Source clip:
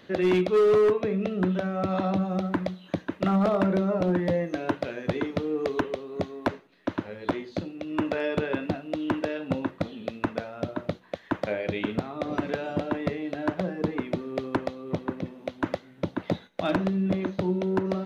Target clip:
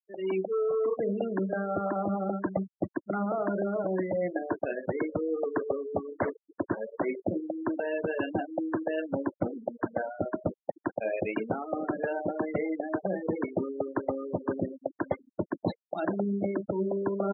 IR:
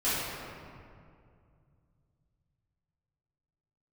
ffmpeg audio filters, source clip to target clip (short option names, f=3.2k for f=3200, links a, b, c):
-af "bass=f=250:g=-10,treble=f=4k:g=-10,areverse,acompressor=threshold=-40dB:ratio=10,areverse,asetrate=45938,aresample=44100,aecho=1:1:929|1858:0.0891|0.0232,afftfilt=real='re*gte(hypot(re,im),0.00891)':imag='im*gte(hypot(re,im),0.00891)':win_size=1024:overlap=0.75,dynaudnorm=f=150:g=3:m=15dB,equalizer=f=960:w=0.66:g=-2.5" -ar 12000 -c:a libmp3lame -b:a 56k